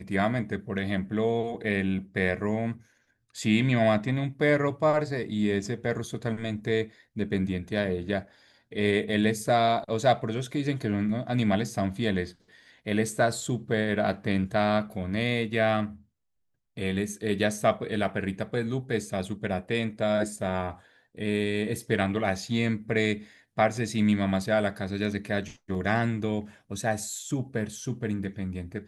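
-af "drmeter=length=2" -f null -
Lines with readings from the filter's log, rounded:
Channel 1: DR: 14.2
Overall DR: 14.2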